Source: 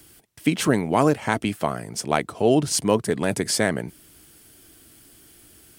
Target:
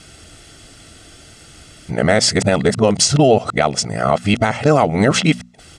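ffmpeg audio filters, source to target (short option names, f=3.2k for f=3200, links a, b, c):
-af "areverse,lowpass=f=7.5k:w=0.5412,lowpass=f=7.5k:w=1.3066,bandreject=f=60:t=h:w=6,bandreject=f=120:t=h:w=6,bandreject=f=180:t=h:w=6,bandreject=f=240:t=h:w=6,aecho=1:1:1.5:0.47,acompressor=threshold=-23dB:ratio=2,alimiter=level_in=13.5dB:limit=-1dB:release=50:level=0:latency=1,volume=-1dB"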